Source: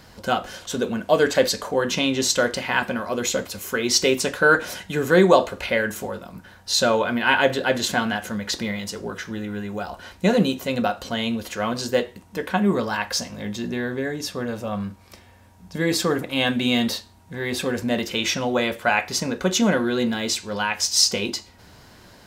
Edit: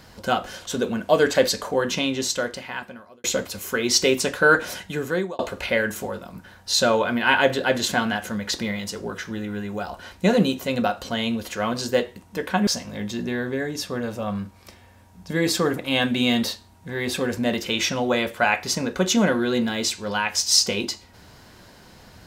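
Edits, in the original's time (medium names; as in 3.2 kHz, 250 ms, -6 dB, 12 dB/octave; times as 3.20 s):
1.71–3.24 s: fade out
4.78–5.39 s: fade out
12.67–13.12 s: delete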